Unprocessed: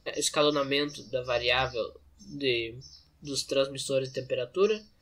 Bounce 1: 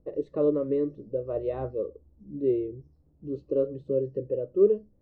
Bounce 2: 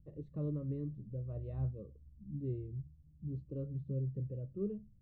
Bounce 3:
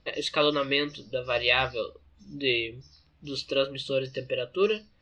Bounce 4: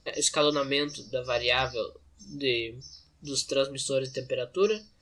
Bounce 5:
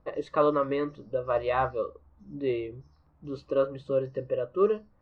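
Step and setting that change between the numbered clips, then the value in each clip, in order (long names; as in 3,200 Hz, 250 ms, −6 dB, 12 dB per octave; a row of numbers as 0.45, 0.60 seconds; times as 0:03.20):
low-pass with resonance, frequency: 420, 150, 3,100, 8,000, 1,100 Hertz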